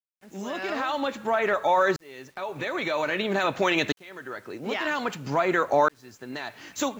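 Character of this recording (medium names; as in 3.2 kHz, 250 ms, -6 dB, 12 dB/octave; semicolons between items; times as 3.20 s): tremolo saw up 0.51 Hz, depth 100%; a quantiser's noise floor 10-bit, dither none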